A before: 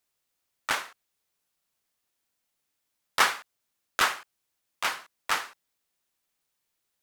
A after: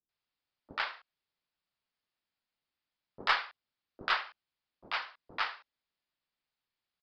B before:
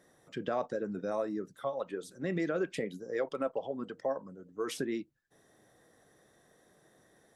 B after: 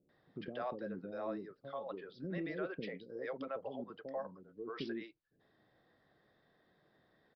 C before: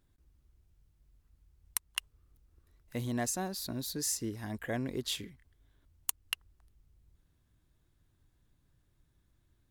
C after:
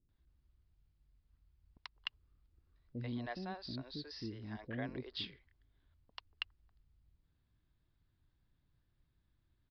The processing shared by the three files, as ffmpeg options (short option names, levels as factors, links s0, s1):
-filter_complex "[0:a]acrossover=split=450[s0][s1];[s1]adelay=90[s2];[s0][s2]amix=inputs=2:normalize=0,aresample=11025,aresample=44100,aeval=exprs='0.447*(cos(1*acos(clip(val(0)/0.447,-1,1)))-cos(1*PI/2))+0.0112*(cos(4*acos(clip(val(0)/0.447,-1,1)))-cos(4*PI/2))':c=same,volume=0.531"